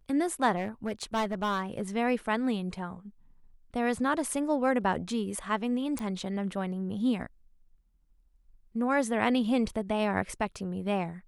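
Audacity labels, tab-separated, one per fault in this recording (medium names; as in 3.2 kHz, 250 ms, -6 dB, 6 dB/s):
0.560000	1.820000	clipped -25 dBFS
5.990000	5.990000	pop -20 dBFS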